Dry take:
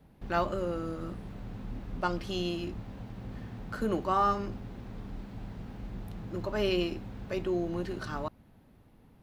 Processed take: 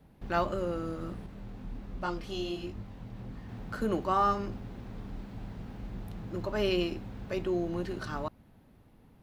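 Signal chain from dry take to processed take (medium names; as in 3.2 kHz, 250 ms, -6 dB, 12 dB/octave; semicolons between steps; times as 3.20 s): 1.26–3.49 s: chorus voices 2, 1.3 Hz, delay 23 ms, depth 3 ms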